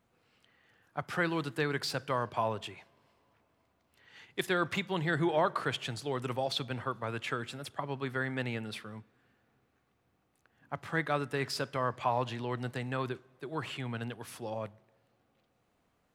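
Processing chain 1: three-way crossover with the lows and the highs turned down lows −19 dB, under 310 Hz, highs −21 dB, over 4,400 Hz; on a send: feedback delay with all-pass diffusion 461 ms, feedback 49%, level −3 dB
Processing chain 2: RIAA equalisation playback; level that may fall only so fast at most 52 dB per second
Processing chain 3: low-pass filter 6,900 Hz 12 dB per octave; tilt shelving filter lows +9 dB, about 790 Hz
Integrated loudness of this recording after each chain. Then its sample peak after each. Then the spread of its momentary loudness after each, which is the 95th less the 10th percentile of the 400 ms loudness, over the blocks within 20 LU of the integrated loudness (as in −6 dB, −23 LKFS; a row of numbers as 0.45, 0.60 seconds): −35.0, −29.0, −31.5 LKFS; −15.0, −13.0, −14.0 dBFS; 16, 10, 10 LU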